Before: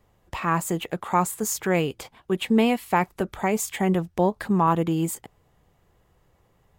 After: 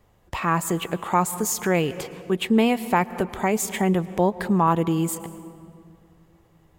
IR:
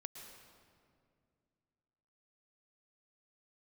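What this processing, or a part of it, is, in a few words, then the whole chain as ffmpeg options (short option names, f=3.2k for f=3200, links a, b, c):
ducked reverb: -filter_complex "[0:a]asplit=3[a][b][c];[1:a]atrim=start_sample=2205[d];[b][d]afir=irnorm=-1:irlink=0[e];[c]apad=whole_len=299303[f];[e][f]sidechaincompress=threshold=-26dB:ratio=8:attack=16:release=200,volume=-3dB[g];[a][g]amix=inputs=2:normalize=0"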